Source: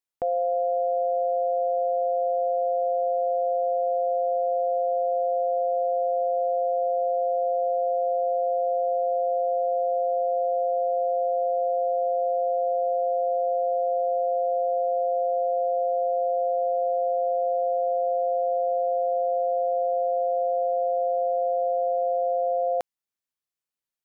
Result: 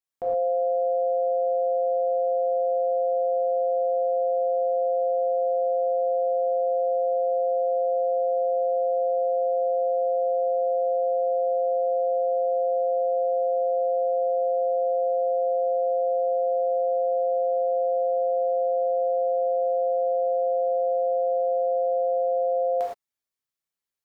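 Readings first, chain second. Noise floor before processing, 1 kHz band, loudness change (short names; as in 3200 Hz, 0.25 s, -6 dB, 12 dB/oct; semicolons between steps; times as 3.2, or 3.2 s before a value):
under -85 dBFS, n/a, +0.5 dB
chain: non-linear reverb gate 0.14 s flat, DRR -5 dB; gain -5.5 dB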